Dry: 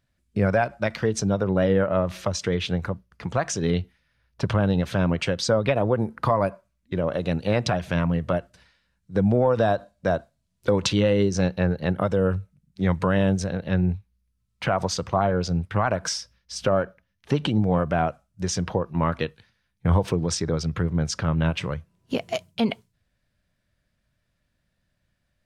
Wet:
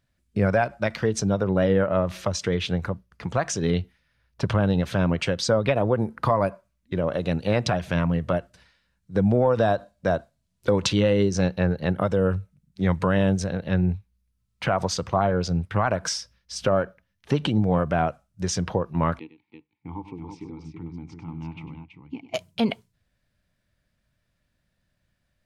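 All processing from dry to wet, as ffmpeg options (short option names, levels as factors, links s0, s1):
-filter_complex "[0:a]asettb=1/sr,asplit=3[s0][s1][s2];[s0]atrim=end=19.194[s3];[s1]atrim=start=19.19:end=22.34,asetpts=PTS-STARTPTS,afade=t=in:d=0.004:c=qsin,afade=t=out:st=3.146:d=0.004:c=qsin,aecho=1:1:99|329:0.224|0.501,atrim=end_sample=138915,asubboost=boost=6.5:cutoff=150,asplit=3[s4][s5][s6];[s4]bandpass=f=300:t=q:w=8,volume=1[s7];[s5]bandpass=f=870:t=q:w=8,volume=0.501[s8];[s6]bandpass=f=2240:t=q:w=8,volume=0.355[s9];[s7][s8][s9]amix=inputs=3:normalize=0[s10];[s2]atrim=start=22.336[s11];[s3][s10]acrossfade=d=0.004:c1=hsin:c2=qsin[s12];[s12][s11]acrossfade=d=0.004:c1=qsin:c2=hsin"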